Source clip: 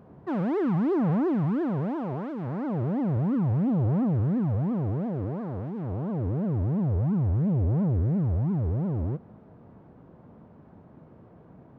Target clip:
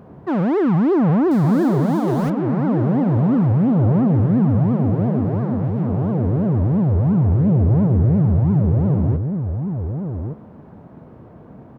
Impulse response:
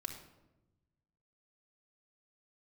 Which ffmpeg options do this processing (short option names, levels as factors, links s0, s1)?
-filter_complex "[0:a]asettb=1/sr,asplit=3[s0][s1][s2];[s0]atrim=end=1.314[s3];[s1]atrim=start=1.31:end=2.3,asetpts=PTS-STARTPTS,afade=t=in:d=0.004:c=qsin,afade=t=out:st=0.986:d=0.004:c=qsin,aeval=exprs='val(0)+0.5*0.0141*sgn(val(0))':c=same[s4];[s2]atrim=start=2.296[s5];[s3][s4]acrossfade=d=0.004:c1=hsin:c2=qsin[s6];[s6][s5]acrossfade=d=0.004:c1=qsin:c2=hsin,asplit=2[s7][s8];[s8]adelay=1166,volume=0.501,highshelf=f=4000:g=-26.2[s9];[s7][s9]amix=inputs=2:normalize=0,volume=2.66"